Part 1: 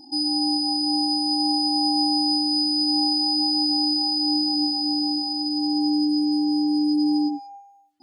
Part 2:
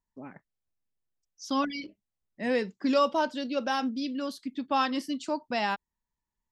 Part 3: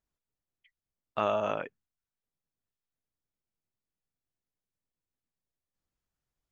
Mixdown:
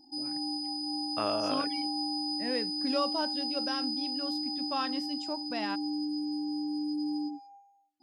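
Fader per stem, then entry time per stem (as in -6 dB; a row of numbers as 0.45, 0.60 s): -12.0, -7.0, -3.5 dB; 0.00, 0.00, 0.00 s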